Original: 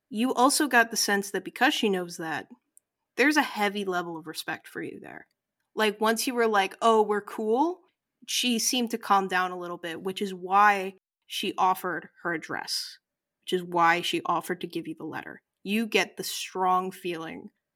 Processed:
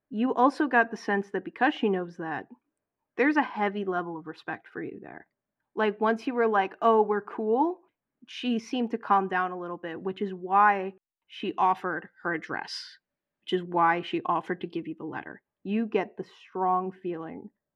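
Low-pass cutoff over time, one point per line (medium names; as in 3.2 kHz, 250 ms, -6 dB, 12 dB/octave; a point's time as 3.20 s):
11.37 s 1.7 kHz
11.91 s 3.7 kHz
13.52 s 3.7 kHz
13.87 s 1.4 kHz
14.36 s 2.4 kHz
15.13 s 2.4 kHz
16.02 s 1.1 kHz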